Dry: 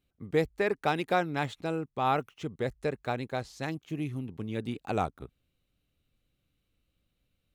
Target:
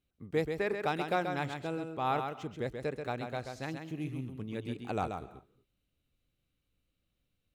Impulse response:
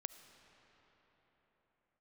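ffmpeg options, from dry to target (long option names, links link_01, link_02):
-filter_complex "[0:a]asplit=2[link_01][link_02];[1:a]atrim=start_sample=2205,afade=type=out:start_time=0.3:duration=0.01,atrim=end_sample=13671,adelay=133[link_03];[link_02][link_03]afir=irnorm=-1:irlink=0,volume=-2dB[link_04];[link_01][link_04]amix=inputs=2:normalize=0,volume=-4.5dB"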